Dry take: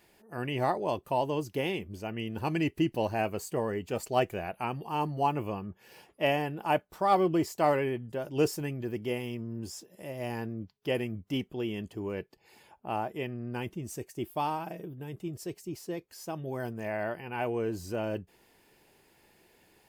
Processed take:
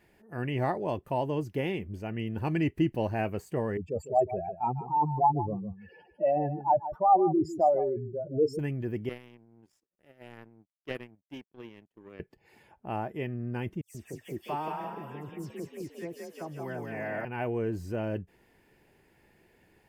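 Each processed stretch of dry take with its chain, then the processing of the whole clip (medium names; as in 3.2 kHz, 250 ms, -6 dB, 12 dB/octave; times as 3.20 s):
3.77–8.59 s: spectral contrast enhancement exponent 3 + dynamic bell 920 Hz, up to +8 dB, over -41 dBFS, Q 1.4 + delay 153 ms -12.5 dB
9.09–12.20 s: high-pass 210 Hz + power-law waveshaper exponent 2
13.81–17.25 s: bass shelf 290 Hz -8 dB + phase dispersion lows, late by 135 ms, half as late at 2.9 kHz + frequency-shifting echo 176 ms, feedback 47%, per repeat +36 Hz, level -4 dB
whole clip: de-esser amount 85%; FFT filter 110 Hz 0 dB, 1.2 kHz -8 dB, 1.8 kHz -3 dB, 4 kHz -13 dB; trim +4.5 dB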